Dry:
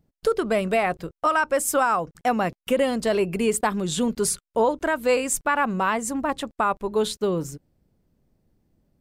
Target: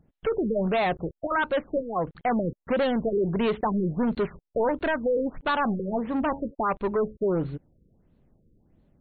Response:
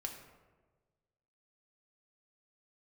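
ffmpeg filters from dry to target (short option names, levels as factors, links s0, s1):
-filter_complex "[0:a]asoftclip=type=tanh:threshold=0.0562,asplit=3[s0][s1][s2];[s0]afade=t=out:st=5.42:d=0.02[s3];[s1]bandreject=f=92.63:t=h:w=4,bandreject=f=185.26:t=h:w=4,bandreject=f=277.89:t=h:w=4,bandreject=f=370.52:t=h:w=4,bandreject=f=463.15:t=h:w=4,bandreject=f=555.78:t=h:w=4,bandreject=f=648.41:t=h:w=4,bandreject=f=741.04:t=h:w=4,bandreject=f=833.67:t=h:w=4,bandreject=f=926.3:t=h:w=4,afade=t=in:st=5.42:d=0.02,afade=t=out:st=6.53:d=0.02[s4];[s2]afade=t=in:st=6.53:d=0.02[s5];[s3][s4][s5]amix=inputs=3:normalize=0,afftfilt=real='re*lt(b*sr/1024,530*pow(4500/530,0.5+0.5*sin(2*PI*1.5*pts/sr)))':imag='im*lt(b*sr/1024,530*pow(4500/530,0.5+0.5*sin(2*PI*1.5*pts/sr)))':win_size=1024:overlap=0.75,volume=1.68"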